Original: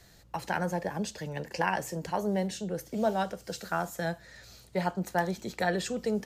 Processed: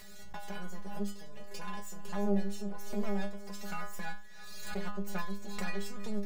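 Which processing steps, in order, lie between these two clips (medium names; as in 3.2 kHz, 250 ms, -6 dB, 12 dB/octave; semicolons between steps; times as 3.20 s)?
time-frequency box 0.51–2.09 s, 550–2800 Hz -7 dB; half-wave rectifier; inharmonic resonator 200 Hz, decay 0.39 s, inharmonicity 0.002; thinning echo 315 ms, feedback 54%, high-pass 420 Hz, level -20 dB; swell ahead of each attack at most 33 dB/s; trim +8.5 dB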